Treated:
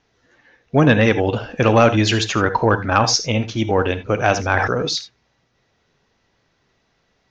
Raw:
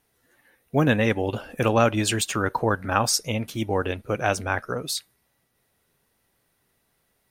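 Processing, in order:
reverb whose tail is shaped and stops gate 100 ms rising, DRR 11.5 dB
sine wavefolder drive 3 dB, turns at −2 dBFS
Butterworth low-pass 6,500 Hz 72 dB per octave
0:04.51–0:04.96: level that may fall only so fast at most 24 dB per second

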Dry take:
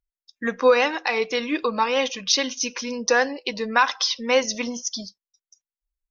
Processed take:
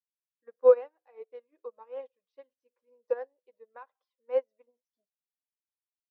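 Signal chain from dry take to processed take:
four-pole ladder band-pass 580 Hz, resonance 50%
notch filter 700 Hz, Q 23
expander for the loud parts 2.5 to 1, over −42 dBFS
level +4.5 dB

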